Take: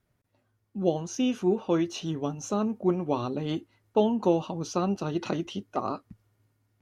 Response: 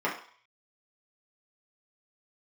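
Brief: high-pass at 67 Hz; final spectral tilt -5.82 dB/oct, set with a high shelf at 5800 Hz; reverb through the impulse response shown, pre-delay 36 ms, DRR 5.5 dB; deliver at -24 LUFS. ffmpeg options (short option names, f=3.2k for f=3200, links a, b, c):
-filter_complex "[0:a]highpass=67,highshelf=f=5.8k:g=6,asplit=2[a][b];[1:a]atrim=start_sample=2205,adelay=36[c];[b][c]afir=irnorm=-1:irlink=0,volume=-16.5dB[d];[a][d]amix=inputs=2:normalize=0,volume=4dB"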